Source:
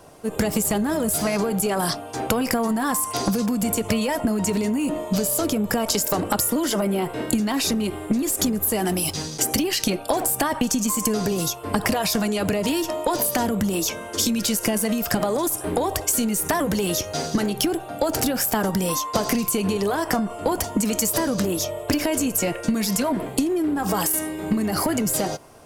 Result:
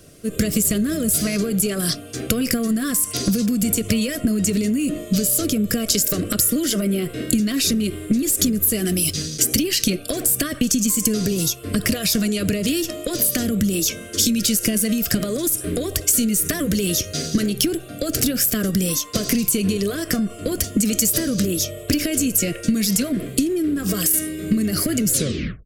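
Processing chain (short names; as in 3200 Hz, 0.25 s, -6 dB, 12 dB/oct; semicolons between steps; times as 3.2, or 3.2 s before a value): tape stop at the end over 0.55 s; Butterworth band-stop 880 Hz, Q 2.2; bell 880 Hz -14 dB 1.7 oct; gain +5 dB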